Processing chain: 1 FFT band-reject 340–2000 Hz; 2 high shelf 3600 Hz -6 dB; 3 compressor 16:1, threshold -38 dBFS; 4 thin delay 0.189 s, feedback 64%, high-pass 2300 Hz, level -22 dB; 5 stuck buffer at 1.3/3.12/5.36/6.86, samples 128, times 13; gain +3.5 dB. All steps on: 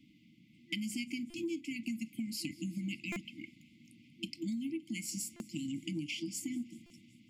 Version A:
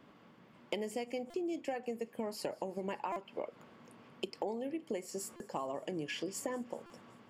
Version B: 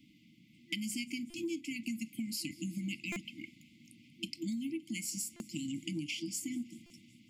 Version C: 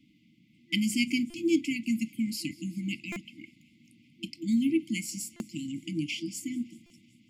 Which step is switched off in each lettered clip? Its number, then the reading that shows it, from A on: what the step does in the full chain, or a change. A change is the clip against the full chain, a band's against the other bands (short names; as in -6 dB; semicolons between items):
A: 1, 1 kHz band +26.5 dB; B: 2, 8 kHz band +3.0 dB; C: 3, mean gain reduction 5.0 dB